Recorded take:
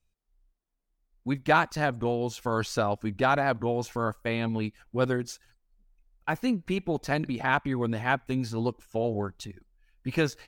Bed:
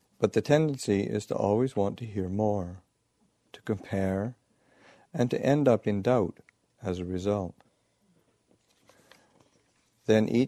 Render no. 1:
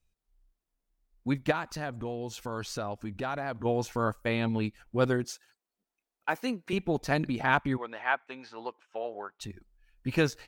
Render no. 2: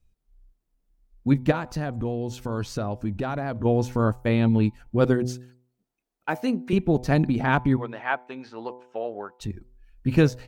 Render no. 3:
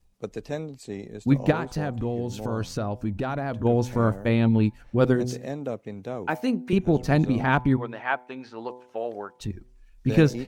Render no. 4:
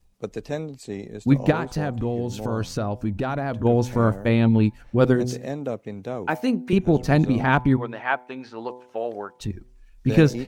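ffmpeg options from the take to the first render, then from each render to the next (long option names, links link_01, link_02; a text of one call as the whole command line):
ffmpeg -i in.wav -filter_complex "[0:a]asplit=3[link_01][link_02][link_03];[link_01]afade=type=out:start_time=1.5:duration=0.02[link_04];[link_02]acompressor=threshold=-37dB:ratio=2:attack=3.2:release=140:knee=1:detection=peak,afade=type=in:start_time=1.5:duration=0.02,afade=type=out:start_time=3.64:duration=0.02[link_05];[link_03]afade=type=in:start_time=3.64:duration=0.02[link_06];[link_04][link_05][link_06]amix=inputs=3:normalize=0,asettb=1/sr,asplit=3[link_07][link_08][link_09];[link_07]atrim=end=5.244[link_10];[link_08]atrim=start=5.24:end=6.73,asetpts=PTS-STARTPTS,afade=type=in:duration=0.004:curve=qsin,afade=type=out:start_time=1.486:duration=0.004:curve=qsin,highpass=330[link_11];[link_09]atrim=start=6.726[link_12];[link_10][link_11]acrossfade=duration=0.004:curve1=hsin:curve2=qsin[link_13];[link_13][link_12]acrossfade=duration=0.004:curve1=qsin:curve2=hsin,asplit=3[link_14][link_15][link_16];[link_14]afade=type=out:start_time=7.76:duration=0.02[link_17];[link_15]highpass=730,lowpass=2800,afade=type=in:start_time=7.76:duration=0.02,afade=type=out:start_time=9.4:duration=0.02[link_18];[link_16]afade=type=in:start_time=9.4:duration=0.02[link_19];[link_17][link_18][link_19]amix=inputs=3:normalize=0" out.wav
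ffmpeg -i in.wav -af "lowshelf=frequency=450:gain=12,bandreject=frequency=124.8:width_type=h:width=4,bandreject=frequency=249.6:width_type=h:width=4,bandreject=frequency=374.4:width_type=h:width=4,bandreject=frequency=499.2:width_type=h:width=4,bandreject=frequency=624:width_type=h:width=4,bandreject=frequency=748.8:width_type=h:width=4,bandreject=frequency=873.6:width_type=h:width=4,bandreject=frequency=998.4:width_type=h:width=4" out.wav
ffmpeg -i in.wav -i bed.wav -filter_complex "[1:a]volume=-9dB[link_01];[0:a][link_01]amix=inputs=2:normalize=0" out.wav
ffmpeg -i in.wav -af "volume=2.5dB,alimiter=limit=-3dB:level=0:latency=1" out.wav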